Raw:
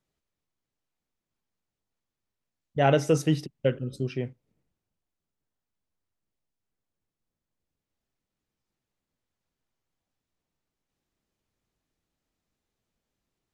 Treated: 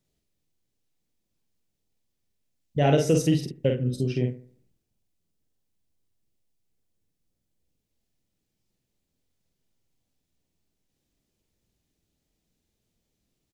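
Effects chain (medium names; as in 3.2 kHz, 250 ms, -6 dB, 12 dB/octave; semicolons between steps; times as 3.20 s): peaking EQ 1.2 kHz -11 dB 1.7 oct; in parallel at -0.5 dB: compression, threshold -29 dBFS, peak gain reduction 10 dB; on the sum: doubling 48 ms -4 dB; bucket-brigade echo 72 ms, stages 1024, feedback 39%, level -16 dB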